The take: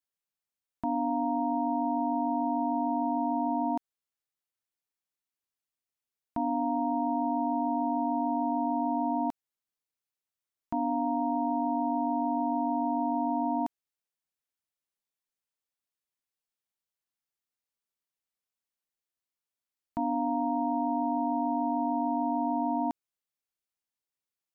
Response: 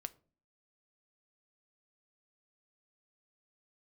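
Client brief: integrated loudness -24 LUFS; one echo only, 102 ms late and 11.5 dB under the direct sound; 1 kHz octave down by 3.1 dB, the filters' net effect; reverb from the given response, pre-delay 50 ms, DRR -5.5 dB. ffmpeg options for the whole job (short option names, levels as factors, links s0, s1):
-filter_complex "[0:a]equalizer=f=1000:t=o:g=-4,aecho=1:1:102:0.266,asplit=2[s0][s1];[1:a]atrim=start_sample=2205,adelay=50[s2];[s1][s2]afir=irnorm=-1:irlink=0,volume=2.82[s3];[s0][s3]amix=inputs=2:normalize=0"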